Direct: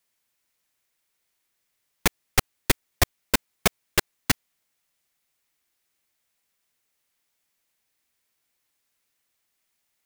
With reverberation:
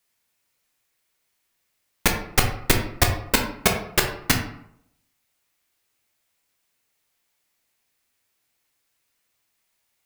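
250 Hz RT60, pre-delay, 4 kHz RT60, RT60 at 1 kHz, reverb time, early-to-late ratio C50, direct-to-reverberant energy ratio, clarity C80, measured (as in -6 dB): 0.70 s, 10 ms, 0.40 s, 0.70 s, 0.70 s, 6.5 dB, 2.0 dB, 10.0 dB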